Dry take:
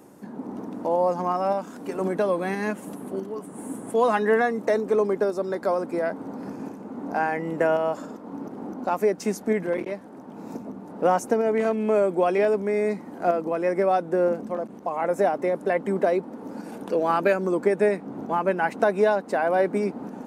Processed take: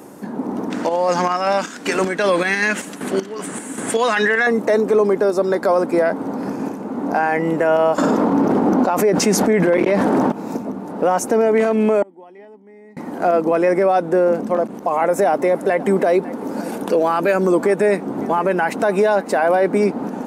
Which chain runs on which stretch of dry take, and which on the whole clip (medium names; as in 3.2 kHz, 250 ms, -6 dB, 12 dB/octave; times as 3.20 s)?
0.70–4.47 s: high-order bell 3.4 kHz +13 dB 2.8 oct + square tremolo 2.6 Hz, depth 60%
7.98–10.32 s: treble shelf 9 kHz -9 dB + level flattener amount 70%
12.02–12.97 s: inverted gate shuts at -25 dBFS, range -37 dB + small resonant body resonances 260/850/1900/3000 Hz, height 13 dB, ringing for 20 ms
14.74–19.57 s: treble shelf 8 kHz +5.5 dB + delay 549 ms -23.5 dB
whole clip: bass shelf 140 Hz -6 dB; loudness maximiser +18.5 dB; trim -7 dB